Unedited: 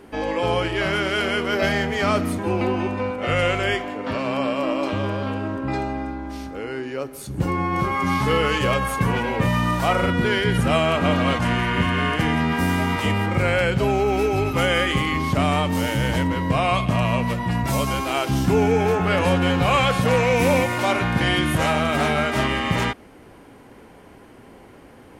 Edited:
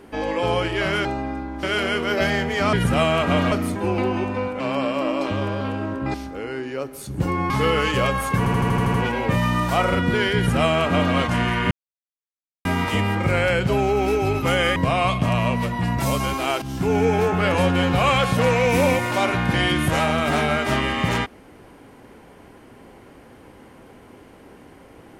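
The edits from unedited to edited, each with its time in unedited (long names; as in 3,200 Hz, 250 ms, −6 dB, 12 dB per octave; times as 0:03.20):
0:03.23–0:04.22: remove
0:05.76–0:06.34: move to 0:01.05
0:07.70–0:08.17: remove
0:09.05: stutter 0.08 s, 8 plays
0:10.47–0:11.26: duplicate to 0:02.15
0:11.82–0:12.76: silence
0:14.87–0:16.43: remove
0:18.29–0:18.70: fade in, from −13.5 dB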